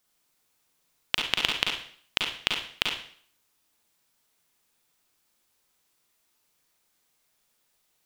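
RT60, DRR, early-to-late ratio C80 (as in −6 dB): 0.55 s, 0.0 dB, 7.5 dB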